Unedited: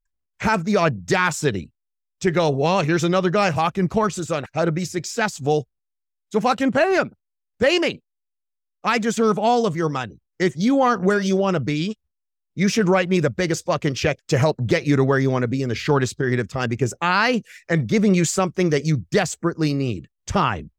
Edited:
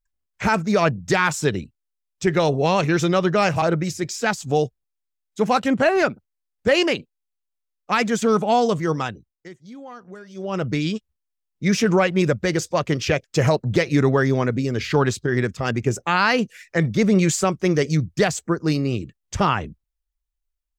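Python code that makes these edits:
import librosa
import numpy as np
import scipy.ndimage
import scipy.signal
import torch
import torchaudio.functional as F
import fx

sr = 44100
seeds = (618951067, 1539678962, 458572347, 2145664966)

y = fx.edit(x, sr, fx.cut(start_s=3.62, length_s=0.95),
    fx.fade_down_up(start_s=10.05, length_s=1.63, db=-21.5, fade_s=0.39), tone=tone)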